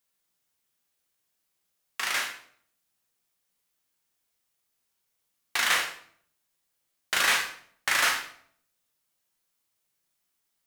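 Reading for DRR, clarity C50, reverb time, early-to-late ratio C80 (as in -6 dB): 1.0 dB, 7.5 dB, 0.60 s, 10.5 dB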